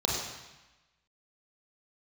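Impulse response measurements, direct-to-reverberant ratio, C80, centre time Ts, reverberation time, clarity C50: -2.0 dB, 3.0 dB, 65 ms, 1.1 s, 1.0 dB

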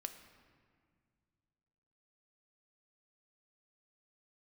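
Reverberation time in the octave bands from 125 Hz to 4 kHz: 2.9, 2.6, 2.1, 1.9, 1.8, 1.3 s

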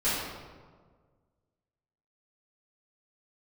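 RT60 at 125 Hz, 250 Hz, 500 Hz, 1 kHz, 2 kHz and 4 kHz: 2.0, 1.8, 1.7, 1.5, 1.1, 0.90 s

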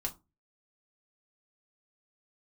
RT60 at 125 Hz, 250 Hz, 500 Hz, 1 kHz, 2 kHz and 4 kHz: 0.40, 0.35, 0.25, 0.25, 0.15, 0.15 s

